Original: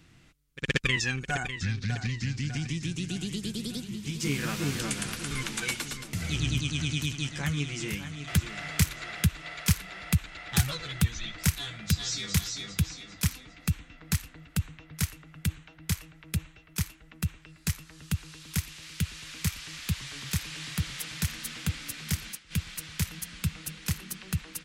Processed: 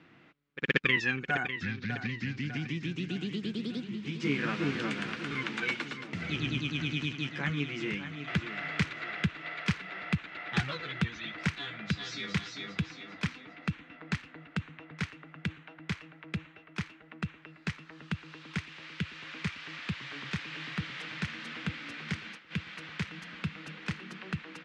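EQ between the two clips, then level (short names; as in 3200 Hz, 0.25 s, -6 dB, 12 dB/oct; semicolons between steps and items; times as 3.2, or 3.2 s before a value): dynamic EQ 730 Hz, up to -6 dB, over -49 dBFS, Q 0.81; BPF 250–2300 Hz; air absorption 52 m; +5.5 dB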